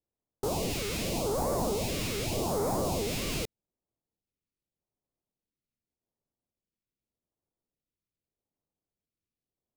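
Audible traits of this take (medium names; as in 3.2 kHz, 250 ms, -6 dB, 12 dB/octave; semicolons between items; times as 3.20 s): aliases and images of a low sample rate 1.7 kHz, jitter 20%; phasing stages 2, 0.84 Hz, lowest notch 800–2600 Hz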